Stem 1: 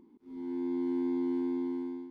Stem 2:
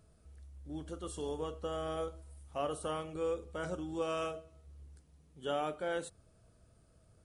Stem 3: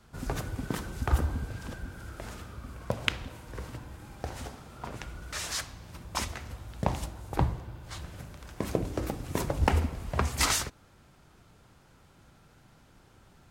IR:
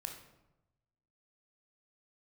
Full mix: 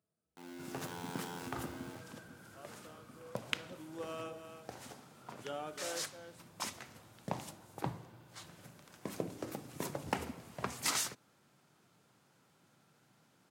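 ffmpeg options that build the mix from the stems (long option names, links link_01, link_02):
-filter_complex "[0:a]acrusher=bits=5:mix=0:aa=0.000001,aeval=exprs='0.02*(abs(mod(val(0)/0.02+3,4)-2)-1)':channel_layout=same,volume=-2.5dB[link_01];[1:a]volume=-7.5dB,afade=type=in:start_time=3.57:duration=0.37:silence=0.237137,asplit=2[link_02][link_03];[link_03]volume=-9.5dB[link_04];[2:a]highshelf=frequency=4700:gain=4.5,adelay=450,volume=-9dB[link_05];[link_04]aecho=0:1:312:1[link_06];[link_01][link_02][link_05][link_06]amix=inputs=4:normalize=0,highpass=frequency=130:width=0.5412,highpass=frequency=130:width=1.3066"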